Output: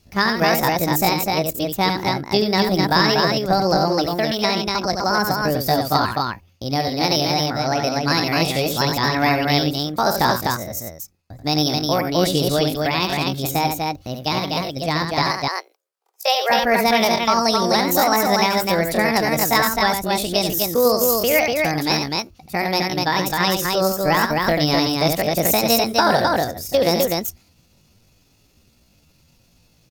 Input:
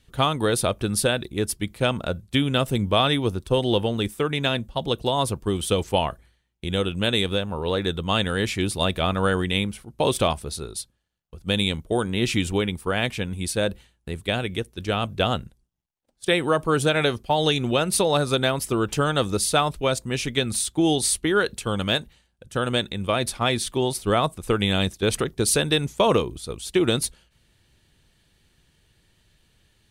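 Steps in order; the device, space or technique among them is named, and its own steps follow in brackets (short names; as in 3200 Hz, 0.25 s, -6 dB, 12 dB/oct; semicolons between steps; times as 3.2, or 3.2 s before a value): 15.24–16.52 steep high-pass 280 Hz 48 dB/oct; loudspeakers at several distances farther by 27 m -6 dB, 86 m -3 dB; chipmunk voice (pitch shift +7 st); gain +2.5 dB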